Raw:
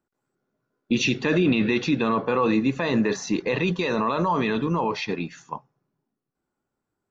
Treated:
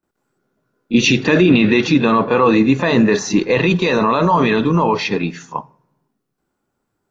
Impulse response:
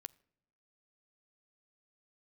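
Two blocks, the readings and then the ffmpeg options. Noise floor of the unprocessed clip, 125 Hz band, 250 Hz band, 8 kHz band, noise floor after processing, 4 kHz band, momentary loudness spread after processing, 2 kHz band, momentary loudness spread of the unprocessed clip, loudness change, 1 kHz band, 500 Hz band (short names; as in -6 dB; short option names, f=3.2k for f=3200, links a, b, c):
-83 dBFS, +9.0 dB, +9.0 dB, n/a, -74 dBFS, +9.0 dB, 8 LU, +9.0 dB, 9 LU, +9.0 dB, +9.0 dB, +9.0 dB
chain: -filter_complex "[0:a]asplit=2[a][b];[1:a]atrim=start_sample=2205,adelay=30[c];[b][c]afir=irnorm=-1:irlink=0,volume=19dB[d];[a][d]amix=inputs=2:normalize=0,volume=-4.5dB"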